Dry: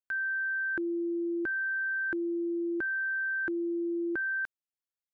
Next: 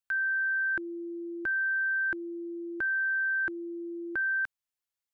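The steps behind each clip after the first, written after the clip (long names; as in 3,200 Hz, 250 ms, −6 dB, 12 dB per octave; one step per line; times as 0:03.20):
parametric band 310 Hz −10 dB 1.6 octaves
level +3.5 dB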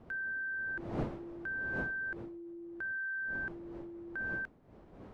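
wind on the microphone 440 Hz −38 dBFS
level −9 dB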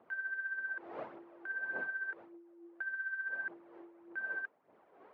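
phase shifter 1.7 Hz, delay 2.9 ms, feedback 46%
band-pass filter 570–2,300 Hz
level −1.5 dB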